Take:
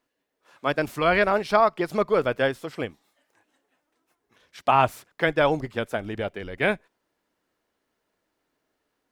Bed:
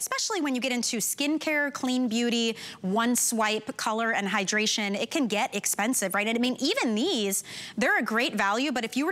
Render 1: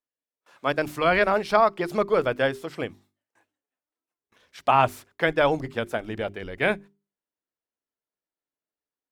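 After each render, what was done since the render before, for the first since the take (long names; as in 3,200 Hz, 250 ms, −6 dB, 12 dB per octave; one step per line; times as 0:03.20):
noise gate with hold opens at −52 dBFS
mains-hum notches 50/100/150/200/250/300/350/400 Hz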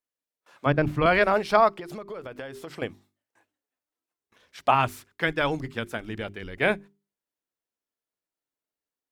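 0:00.66–0:01.06: bass and treble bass +14 dB, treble −14 dB
0:01.74–0:02.82: downward compressor 16 to 1, threshold −33 dBFS
0:04.74–0:06.57: parametric band 630 Hz −8 dB 1.2 octaves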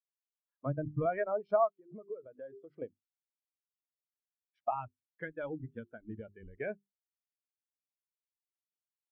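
downward compressor 3 to 1, threshold −32 dBFS, peak gain reduction 13 dB
every bin expanded away from the loudest bin 2.5 to 1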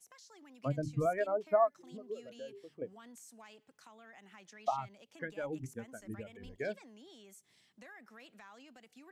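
mix in bed −30 dB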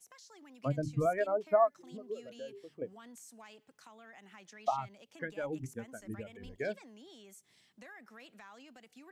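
level +1.5 dB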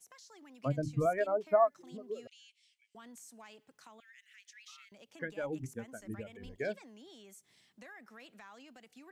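0:02.27–0:02.95: Chebyshev band-pass filter 2,200–9,300 Hz, order 4
0:04.00–0:04.92: Butterworth high-pass 1,700 Hz 48 dB per octave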